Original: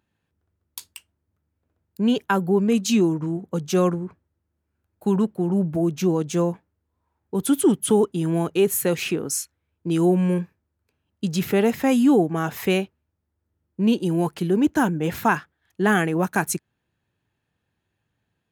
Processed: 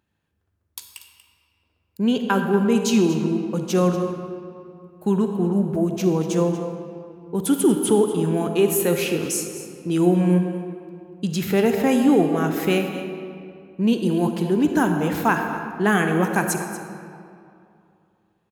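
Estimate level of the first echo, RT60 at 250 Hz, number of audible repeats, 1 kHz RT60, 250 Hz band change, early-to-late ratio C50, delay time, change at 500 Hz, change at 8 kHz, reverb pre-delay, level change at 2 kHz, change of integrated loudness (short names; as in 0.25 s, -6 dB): -14.0 dB, 2.6 s, 1, 2.5 s, +1.0 dB, 5.0 dB, 0.237 s, +1.5 dB, +0.5 dB, 38 ms, +1.5 dB, +1.0 dB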